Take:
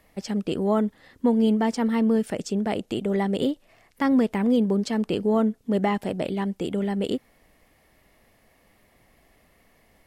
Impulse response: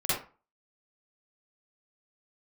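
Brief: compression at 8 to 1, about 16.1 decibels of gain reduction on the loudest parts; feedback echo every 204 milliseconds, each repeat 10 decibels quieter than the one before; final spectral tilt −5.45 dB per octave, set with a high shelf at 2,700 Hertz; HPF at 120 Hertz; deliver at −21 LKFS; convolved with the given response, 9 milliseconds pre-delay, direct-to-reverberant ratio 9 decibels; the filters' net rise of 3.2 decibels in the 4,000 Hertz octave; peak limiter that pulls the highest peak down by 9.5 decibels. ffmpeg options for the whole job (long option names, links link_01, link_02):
-filter_complex "[0:a]highpass=120,highshelf=frequency=2700:gain=-4,equalizer=frequency=4000:width_type=o:gain=8,acompressor=threshold=-34dB:ratio=8,alimiter=level_in=8dB:limit=-24dB:level=0:latency=1,volume=-8dB,aecho=1:1:204|408|612|816:0.316|0.101|0.0324|0.0104,asplit=2[link_01][link_02];[1:a]atrim=start_sample=2205,adelay=9[link_03];[link_02][link_03]afir=irnorm=-1:irlink=0,volume=-18.5dB[link_04];[link_01][link_04]amix=inputs=2:normalize=0,volume=19dB"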